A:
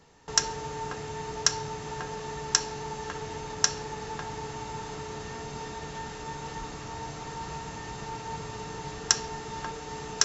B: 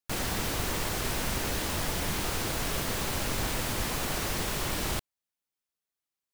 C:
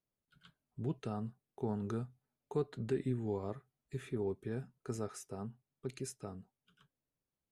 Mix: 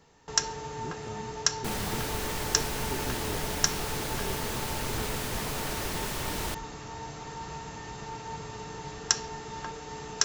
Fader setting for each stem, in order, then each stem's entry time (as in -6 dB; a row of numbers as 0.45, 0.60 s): -2.0, -2.5, -3.5 dB; 0.00, 1.55, 0.00 s